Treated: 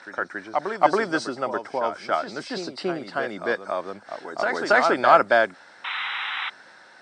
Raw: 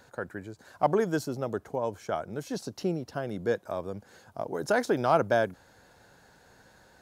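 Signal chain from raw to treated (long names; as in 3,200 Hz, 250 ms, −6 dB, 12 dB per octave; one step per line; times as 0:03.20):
hearing-aid frequency compression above 3,500 Hz 1.5 to 1
high-shelf EQ 5,300 Hz +7.5 dB
backwards echo 278 ms −7 dB
sound drawn into the spectrogram noise, 0:05.84–0:06.50, 740–4,000 Hz −39 dBFS
loudspeaker in its box 340–8,400 Hz, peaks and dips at 460 Hz −7 dB, 1,300 Hz +6 dB, 2,000 Hz +7 dB, 6,900 Hz −10 dB
level +7 dB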